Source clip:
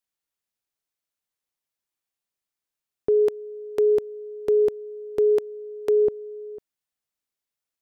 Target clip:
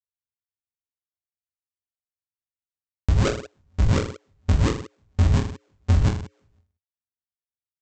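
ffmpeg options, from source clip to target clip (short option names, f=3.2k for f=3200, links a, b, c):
-filter_complex "[0:a]bass=f=250:g=-14,treble=f=4k:g=9,acrossover=split=170[a][b];[b]acrusher=bits=4:mix=0:aa=0.000001[c];[a][c]amix=inputs=2:normalize=0,alimiter=limit=-20dB:level=0:latency=1,aresample=16000,acrusher=samples=27:mix=1:aa=0.000001:lfo=1:lforange=43.2:lforate=1.4,aresample=44100,tremolo=f=120:d=0.788,equalizer=f=88:w=1.5:g=11,aecho=1:1:20|46|79.8|123.7|180.9:0.631|0.398|0.251|0.158|0.1,acompressor=threshold=-20dB:ratio=6,volume=6dB"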